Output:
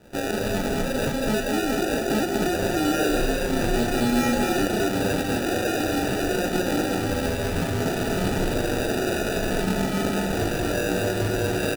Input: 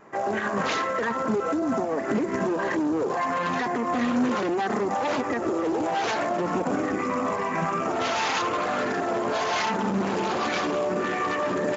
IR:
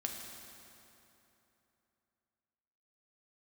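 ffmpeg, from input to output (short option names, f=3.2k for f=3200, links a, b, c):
-filter_complex "[0:a]acrusher=samples=41:mix=1:aa=0.000001,asettb=1/sr,asplit=3[a][b][c];[a]atrim=end=2.824[d];[b]atrim=start=2.82:end=4.65,asetpts=PTS-STARTPTS,afade=t=in:d=0.004:c=qsin,afade=t=out:st=1.826:d=0.004:c=qsin,asplit=2[e][f];[f]adelay=30,volume=-3.5dB[g];[e][g]amix=inputs=2:normalize=0,atrim=end_sample=80703[h];[c]atrim=start=4.646[i];[d][h]acrossfade=d=0.004:c1=hsin:c2=qsin[j];[j][i]acrossfade=d=0.004:c1=qsin:c2=hsin,aecho=1:1:37.9|198.3|239.1:0.355|0.316|0.562"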